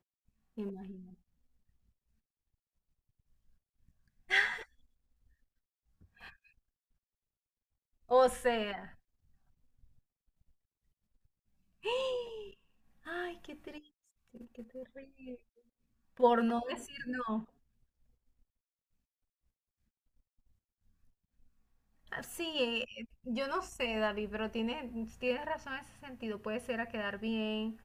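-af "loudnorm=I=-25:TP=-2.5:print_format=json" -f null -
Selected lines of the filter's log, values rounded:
"input_i" : "-35.6",
"input_tp" : "-14.5",
"input_lra" : "10.3",
"input_thresh" : "-46.9",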